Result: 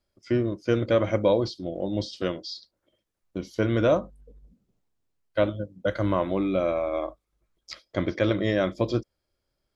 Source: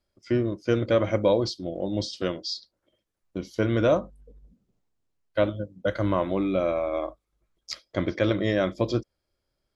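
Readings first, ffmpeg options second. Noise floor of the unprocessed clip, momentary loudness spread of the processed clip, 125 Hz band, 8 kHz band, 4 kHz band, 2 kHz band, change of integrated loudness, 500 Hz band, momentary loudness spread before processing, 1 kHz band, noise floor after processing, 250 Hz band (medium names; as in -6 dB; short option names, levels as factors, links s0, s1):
-80 dBFS, 14 LU, 0.0 dB, no reading, -2.5 dB, 0.0 dB, 0.0 dB, 0.0 dB, 11 LU, 0.0 dB, -80 dBFS, 0.0 dB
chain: -filter_complex "[0:a]acrossover=split=4200[s0][s1];[s1]acompressor=threshold=0.00708:ratio=4:attack=1:release=60[s2];[s0][s2]amix=inputs=2:normalize=0"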